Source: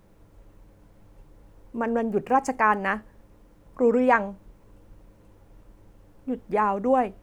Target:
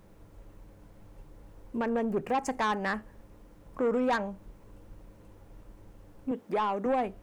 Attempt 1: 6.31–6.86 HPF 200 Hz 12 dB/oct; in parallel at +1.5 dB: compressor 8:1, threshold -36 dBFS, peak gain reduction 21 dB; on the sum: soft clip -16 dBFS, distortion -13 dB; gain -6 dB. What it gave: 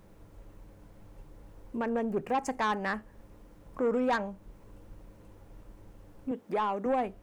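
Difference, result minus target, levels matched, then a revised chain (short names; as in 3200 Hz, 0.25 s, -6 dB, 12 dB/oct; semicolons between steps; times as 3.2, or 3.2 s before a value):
compressor: peak gain reduction +7 dB
6.31–6.86 HPF 200 Hz 12 dB/oct; in parallel at +1.5 dB: compressor 8:1, threshold -28 dBFS, peak gain reduction 14 dB; on the sum: soft clip -16 dBFS, distortion -12 dB; gain -6 dB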